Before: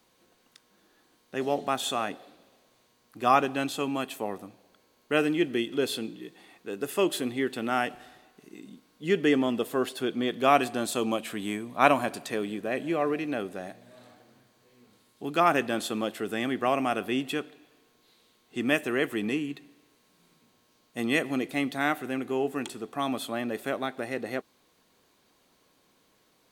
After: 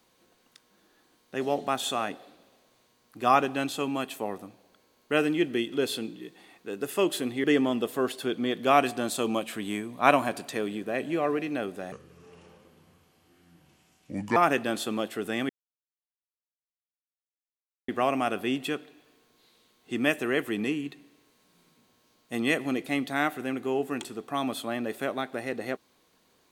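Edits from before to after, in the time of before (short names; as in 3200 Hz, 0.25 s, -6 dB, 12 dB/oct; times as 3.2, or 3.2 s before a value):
7.44–9.21 cut
13.69–15.4 speed 70%
16.53 insert silence 2.39 s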